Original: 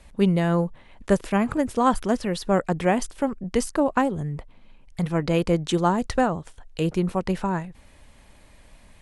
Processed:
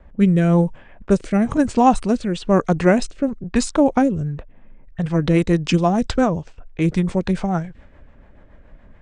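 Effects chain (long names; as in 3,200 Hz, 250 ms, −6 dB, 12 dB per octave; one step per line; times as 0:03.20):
formants moved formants −3 semitones
low-pass that shuts in the quiet parts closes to 1,300 Hz, open at −19.5 dBFS
rotating-speaker cabinet horn 1 Hz, later 7 Hz, at 0:04.01
level +7 dB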